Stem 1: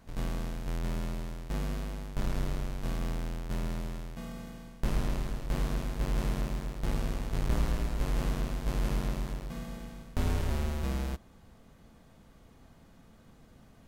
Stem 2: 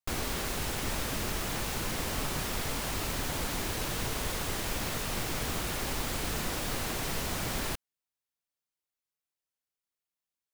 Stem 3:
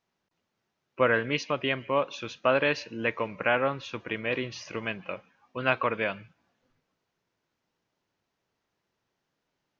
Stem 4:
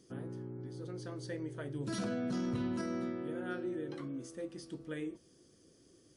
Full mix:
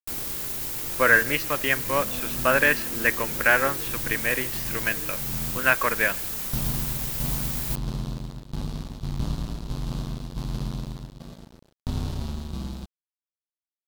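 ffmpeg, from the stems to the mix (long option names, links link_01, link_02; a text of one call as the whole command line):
ffmpeg -i stem1.wav -i stem2.wav -i stem3.wav -i stem4.wav -filter_complex "[0:a]equalizer=frequency=125:width_type=o:width=1:gain=9,equalizer=frequency=250:width_type=o:width=1:gain=4,equalizer=frequency=500:width_type=o:width=1:gain=-5,equalizer=frequency=1000:width_type=o:width=1:gain=4,equalizer=frequency=2000:width_type=o:width=1:gain=-10,equalizer=frequency=4000:width_type=o:width=1:gain=10,adelay=1700,volume=-7dB[link_01];[1:a]aemphasis=mode=production:type=50fm,volume=-10.5dB[link_02];[2:a]equalizer=frequency=1700:width_type=o:width=0.62:gain=12,volume=-5dB,asplit=2[link_03][link_04];[3:a]volume=-7.5dB[link_05];[link_04]apad=whole_len=686823[link_06];[link_01][link_06]sidechaincompress=threshold=-38dB:ratio=8:attack=16:release=442[link_07];[link_07][link_02][link_03][link_05]amix=inputs=4:normalize=0,acontrast=55,aeval=exprs='sgn(val(0))*max(abs(val(0))-0.0141,0)':channel_layout=same" out.wav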